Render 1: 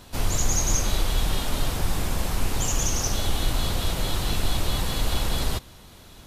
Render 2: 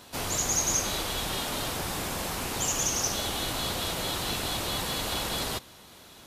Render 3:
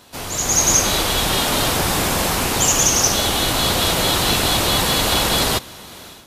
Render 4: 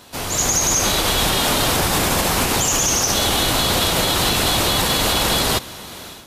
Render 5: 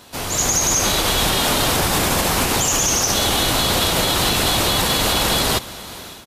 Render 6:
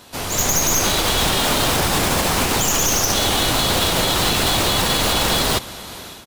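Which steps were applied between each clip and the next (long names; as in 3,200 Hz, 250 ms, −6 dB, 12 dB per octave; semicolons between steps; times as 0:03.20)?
high-pass filter 280 Hz 6 dB per octave
automatic gain control gain up to 11.5 dB; level +2 dB
brickwall limiter −11.5 dBFS, peak gain reduction 9 dB; level +3 dB
single-tap delay 423 ms −22.5 dB
stylus tracing distortion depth 0.042 ms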